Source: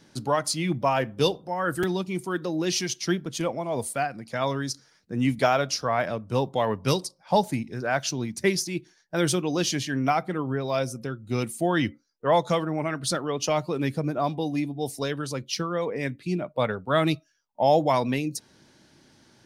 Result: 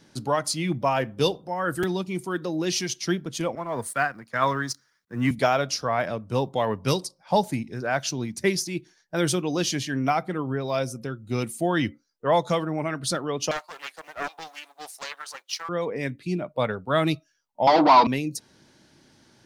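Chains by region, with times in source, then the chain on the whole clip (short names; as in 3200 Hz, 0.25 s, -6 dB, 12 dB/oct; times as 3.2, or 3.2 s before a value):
3.55–5.31 G.711 law mismatch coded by A + band shelf 1400 Hz +8.5 dB 1.2 oct + three-band expander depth 40%
13.51–15.69 G.711 law mismatch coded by A + HPF 750 Hz 24 dB/oct + Doppler distortion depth 0.34 ms
17.67–18.07 overdrive pedal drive 29 dB, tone 2300 Hz, clips at -9 dBFS + speaker cabinet 270–4900 Hz, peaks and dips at 290 Hz +4 dB, 530 Hz -10 dB, 990 Hz +7 dB, 1700 Hz -9 dB, 2800 Hz -4 dB, 4600 Hz +9 dB
whole clip: dry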